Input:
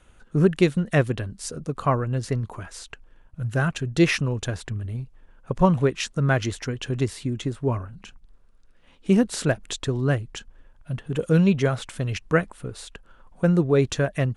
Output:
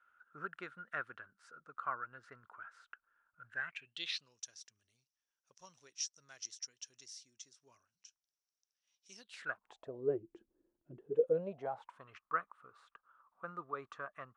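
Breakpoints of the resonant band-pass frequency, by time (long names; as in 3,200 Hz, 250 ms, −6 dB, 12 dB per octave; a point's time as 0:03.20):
resonant band-pass, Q 10
0:03.44 1,400 Hz
0:04.37 5,700 Hz
0:09.15 5,700 Hz
0:09.53 1,200 Hz
0:10.21 340 Hz
0:10.91 340 Hz
0:12.09 1,200 Hz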